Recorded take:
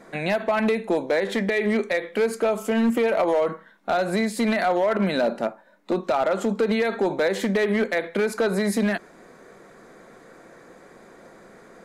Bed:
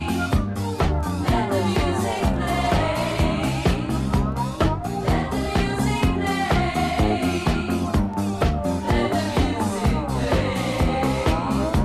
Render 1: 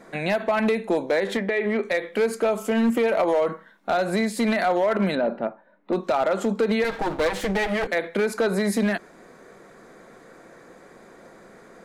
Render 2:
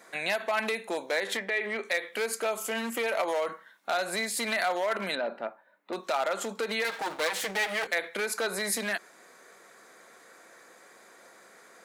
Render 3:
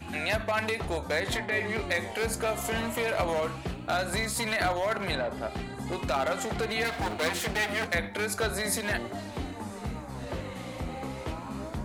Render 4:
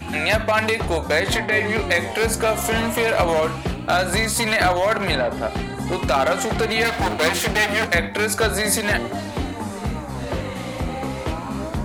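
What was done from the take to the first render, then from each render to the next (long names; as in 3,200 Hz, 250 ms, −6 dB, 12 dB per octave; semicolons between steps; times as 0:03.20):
0:01.37–0:01.85: bass and treble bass −5 dB, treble −14 dB; 0:05.15–0:05.93: high-frequency loss of the air 430 metres; 0:06.84–0:07.87: lower of the sound and its delayed copy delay 6.3 ms
high-pass filter 1,400 Hz 6 dB per octave; high-shelf EQ 6,500 Hz +7 dB
mix in bed −15 dB
level +9.5 dB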